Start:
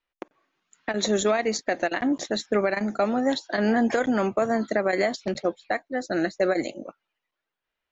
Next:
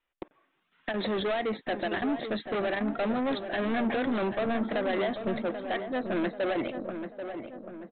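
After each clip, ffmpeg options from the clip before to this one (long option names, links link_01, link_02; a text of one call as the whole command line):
ffmpeg -i in.wav -filter_complex "[0:a]aresample=8000,asoftclip=type=tanh:threshold=-27.5dB,aresample=44100,asplit=2[link_01][link_02];[link_02]adelay=787,lowpass=frequency=1800:poles=1,volume=-8dB,asplit=2[link_03][link_04];[link_04]adelay=787,lowpass=frequency=1800:poles=1,volume=0.51,asplit=2[link_05][link_06];[link_06]adelay=787,lowpass=frequency=1800:poles=1,volume=0.51,asplit=2[link_07][link_08];[link_08]adelay=787,lowpass=frequency=1800:poles=1,volume=0.51,asplit=2[link_09][link_10];[link_10]adelay=787,lowpass=frequency=1800:poles=1,volume=0.51,asplit=2[link_11][link_12];[link_12]adelay=787,lowpass=frequency=1800:poles=1,volume=0.51[link_13];[link_01][link_03][link_05][link_07][link_09][link_11][link_13]amix=inputs=7:normalize=0,volume=1.5dB" out.wav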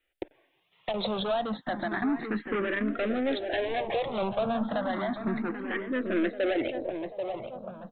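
ffmpeg -i in.wav -filter_complex "[0:a]asplit=2[link_01][link_02];[link_02]acompressor=threshold=-36dB:ratio=6,volume=1.5dB[link_03];[link_01][link_03]amix=inputs=2:normalize=0,asplit=2[link_04][link_05];[link_05]afreqshift=0.31[link_06];[link_04][link_06]amix=inputs=2:normalize=1" out.wav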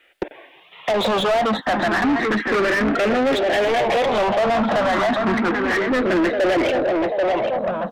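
ffmpeg -i in.wav -filter_complex "[0:a]asplit=2[link_01][link_02];[link_02]highpass=frequency=720:poles=1,volume=28dB,asoftclip=type=tanh:threshold=-16dB[link_03];[link_01][link_03]amix=inputs=2:normalize=0,lowpass=frequency=2200:poles=1,volume=-6dB,volume=4.5dB" out.wav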